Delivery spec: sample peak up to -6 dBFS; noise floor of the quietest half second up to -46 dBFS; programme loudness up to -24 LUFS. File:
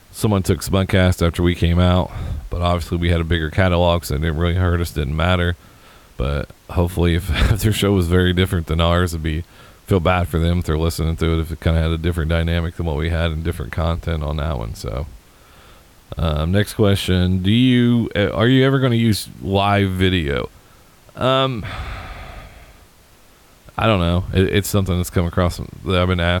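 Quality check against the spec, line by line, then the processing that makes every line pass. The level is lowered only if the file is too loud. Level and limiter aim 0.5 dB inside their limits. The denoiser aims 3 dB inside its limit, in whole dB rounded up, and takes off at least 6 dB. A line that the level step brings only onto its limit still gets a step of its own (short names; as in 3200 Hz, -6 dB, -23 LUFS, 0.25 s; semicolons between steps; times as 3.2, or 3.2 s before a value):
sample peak -4.5 dBFS: fail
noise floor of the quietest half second -49 dBFS: OK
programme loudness -18.5 LUFS: fail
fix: gain -6 dB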